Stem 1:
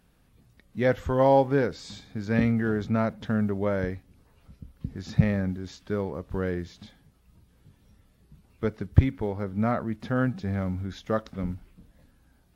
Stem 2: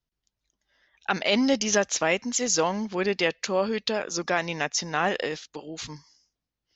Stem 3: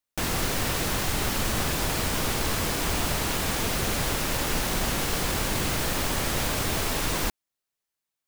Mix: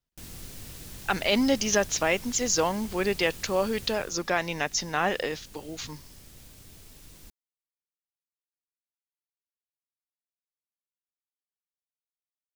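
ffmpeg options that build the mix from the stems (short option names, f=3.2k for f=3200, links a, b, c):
-filter_complex "[1:a]volume=-1dB[a];[2:a]equalizer=f=1k:w=0.4:g=-13,volume=-13dB,afade=t=out:st=3.84:d=0.31:silence=0.421697[b];[a][b]amix=inputs=2:normalize=0"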